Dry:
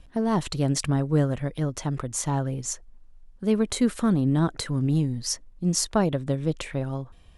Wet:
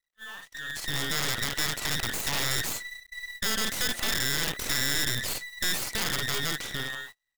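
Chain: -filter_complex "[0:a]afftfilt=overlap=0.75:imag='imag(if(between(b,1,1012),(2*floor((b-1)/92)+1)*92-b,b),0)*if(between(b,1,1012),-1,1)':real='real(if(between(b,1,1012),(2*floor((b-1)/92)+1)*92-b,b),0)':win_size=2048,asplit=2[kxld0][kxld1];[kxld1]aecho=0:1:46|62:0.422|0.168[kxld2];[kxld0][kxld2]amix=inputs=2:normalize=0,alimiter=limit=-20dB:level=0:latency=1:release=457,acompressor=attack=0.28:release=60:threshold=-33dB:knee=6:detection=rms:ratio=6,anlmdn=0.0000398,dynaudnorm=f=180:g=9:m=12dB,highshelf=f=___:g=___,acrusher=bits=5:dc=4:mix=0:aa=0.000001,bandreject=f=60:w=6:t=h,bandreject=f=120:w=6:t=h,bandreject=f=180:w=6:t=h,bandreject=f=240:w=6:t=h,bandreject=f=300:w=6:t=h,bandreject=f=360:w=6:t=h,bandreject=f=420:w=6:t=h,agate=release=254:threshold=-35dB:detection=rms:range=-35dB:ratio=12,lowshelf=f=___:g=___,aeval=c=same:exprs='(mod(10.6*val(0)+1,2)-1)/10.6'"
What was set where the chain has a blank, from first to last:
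9.3k, -3, 230, -11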